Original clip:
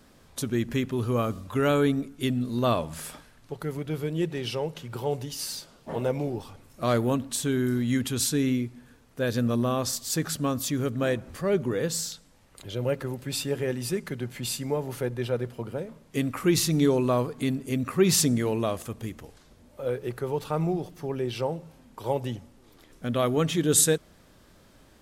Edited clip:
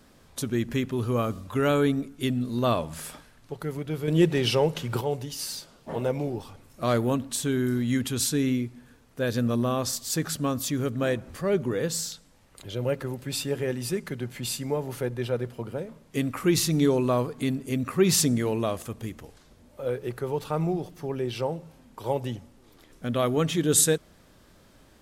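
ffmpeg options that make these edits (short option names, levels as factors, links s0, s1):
-filter_complex "[0:a]asplit=3[s0][s1][s2];[s0]atrim=end=4.082[s3];[s1]atrim=start=4.078:end=5.012,asetpts=PTS-STARTPTS,volume=2.37[s4];[s2]atrim=start=5.008[s5];[s3][s4]acrossfade=d=0.004:c1=hsin:c2=hsin[s6];[s6][s5]acrossfade=d=0.004:c1=hsin:c2=hsin"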